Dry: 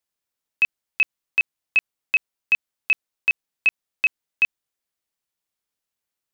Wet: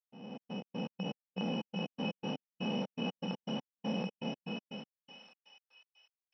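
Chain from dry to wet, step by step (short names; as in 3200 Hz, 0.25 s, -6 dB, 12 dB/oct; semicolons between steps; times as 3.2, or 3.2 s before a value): time blur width 0.885 s; bell 710 Hz -9 dB 1.3 oct; in parallel at -0.5 dB: limiter -38.5 dBFS, peak gain reduction 8.5 dB; on the sum: sample-and-hold 16×; speaker cabinet 470–4700 Hz, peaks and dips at 500 Hz +9 dB, 830 Hz +8 dB, 2500 Hz -4 dB; thinning echo 0.418 s, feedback 73%, high-pass 1100 Hz, level -4 dB; step gate ".xx.x.x.x." 121 bpm -60 dB; spectral expander 1.5:1; gain +8.5 dB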